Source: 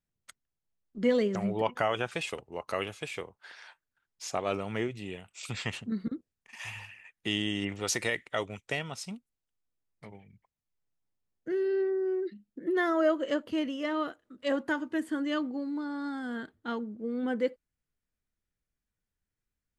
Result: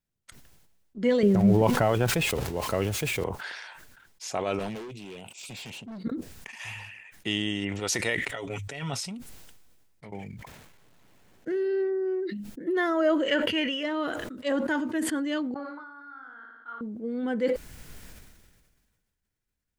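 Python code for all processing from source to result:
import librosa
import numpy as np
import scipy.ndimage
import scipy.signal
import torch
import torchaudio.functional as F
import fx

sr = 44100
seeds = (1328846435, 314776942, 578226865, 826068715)

y = fx.chain(x, sr, fx.crossing_spikes(level_db=-29.0),
    fx.tilt_eq(slope=-4.0), at=(1.23, 3.24))
y = fx.chain(y, sr, fx.highpass(hz=160.0, slope=12),
    fx.band_shelf(hz=1500.0, db=-12.0, octaves=1.0),
    fx.clip_hard(threshold_db=-39.5), at=(4.59, 6.04))
y = fx.chain(y, sr, fx.hum_notches(base_hz=50, count=2),
    fx.over_compress(threshold_db=-39.0, ratio=-1.0),
    fx.comb(ms=7.2, depth=0.67), at=(8.25, 9.01))
y = fx.chain(y, sr, fx.median_filter(points=9),
    fx.low_shelf(hz=76.0, db=-10.5),
    fx.env_flatten(amount_pct=50), at=(10.12, 11.56))
y = fx.chain(y, sr, fx.band_shelf(hz=2200.0, db=10.5, octaves=1.2),
    fx.comb(ms=2.1, depth=0.34), at=(13.28, 13.83))
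y = fx.chain(y, sr, fx.bandpass_q(hz=1300.0, q=6.8),
    fx.room_flutter(wall_m=9.6, rt60_s=0.9), at=(15.54, 16.81))
y = fx.notch(y, sr, hz=1200.0, q=17.0)
y = fx.sustainer(y, sr, db_per_s=35.0)
y = y * 10.0 ** (1.5 / 20.0)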